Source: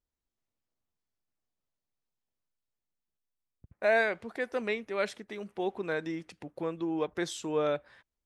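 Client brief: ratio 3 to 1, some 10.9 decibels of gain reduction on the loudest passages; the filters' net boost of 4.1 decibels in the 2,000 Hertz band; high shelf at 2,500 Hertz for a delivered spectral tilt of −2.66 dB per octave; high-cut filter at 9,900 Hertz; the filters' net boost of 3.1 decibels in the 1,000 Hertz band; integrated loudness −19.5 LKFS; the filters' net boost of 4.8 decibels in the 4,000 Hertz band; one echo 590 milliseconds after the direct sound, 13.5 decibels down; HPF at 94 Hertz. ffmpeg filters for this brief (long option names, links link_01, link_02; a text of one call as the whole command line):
ffmpeg -i in.wav -af "highpass=94,lowpass=9900,equalizer=frequency=1000:width_type=o:gain=4,equalizer=frequency=2000:width_type=o:gain=4,highshelf=frequency=2500:gain=-4,equalizer=frequency=4000:width_type=o:gain=7.5,acompressor=threshold=-33dB:ratio=3,aecho=1:1:590:0.211,volume=17.5dB" out.wav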